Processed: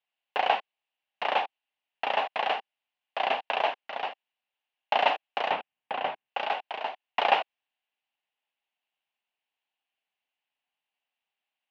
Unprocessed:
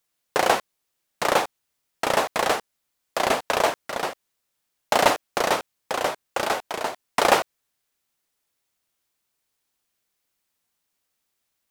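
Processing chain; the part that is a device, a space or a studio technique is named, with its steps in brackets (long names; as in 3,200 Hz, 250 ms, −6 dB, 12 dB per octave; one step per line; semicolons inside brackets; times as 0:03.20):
phone earpiece (loudspeaker in its box 350–3,400 Hz, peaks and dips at 350 Hz −9 dB, 500 Hz −5 dB, 790 Hz +7 dB, 1,300 Hz −6 dB, 2,800 Hz +9 dB)
0:05.51–0:06.28: bass and treble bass +12 dB, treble −10 dB
level −6.5 dB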